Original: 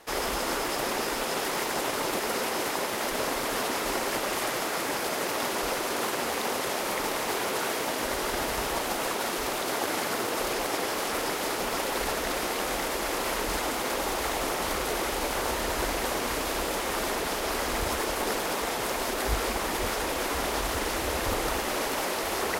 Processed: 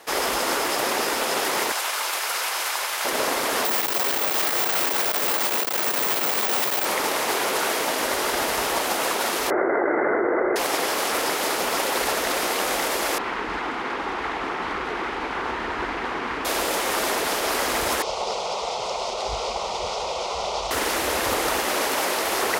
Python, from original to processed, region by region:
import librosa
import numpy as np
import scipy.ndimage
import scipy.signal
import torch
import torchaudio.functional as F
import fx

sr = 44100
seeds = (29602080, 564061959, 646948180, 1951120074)

y = fx.chain(x, sr, fx.highpass(hz=980.0, slope=12),
    fx.notch(hz=1900.0, q=23.0), at=(1.72, 3.05))
y = fx.chain(y, sr, fx.schmitt(flips_db=-40.0),
    fx.resample_bad(factor=2, down='none', up='zero_stuff'),
    fx.transformer_sat(knee_hz=580.0), at=(3.65, 6.85))
y = fx.chain(y, sr, fx.cheby_ripple(hz=2100.0, ripple_db=6),
    fx.peak_eq(hz=360.0, db=10.0, octaves=0.5),
    fx.env_flatten(amount_pct=100), at=(9.5, 10.56))
y = fx.chain(y, sr, fx.lowpass(hz=2100.0, slope=12),
    fx.peak_eq(hz=580.0, db=-11.0, octaves=0.6), at=(13.18, 16.45))
y = fx.chain(y, sr, fx.lowpass(hz=5900.0, slope=24),
    fx.fixed_phaser(hz=700.0, stages=4), at=(18.02, 20.71))
y = scipy.signal.sosfilt(scipy.signal.butter(2, 41.0, 'highpass', fs=sr, output='sos'), y)
y = fx.low_shelf(y, sr, hz=200.0, db=-11.5)
y = y * 10.0 ** (6.5 / 20.0)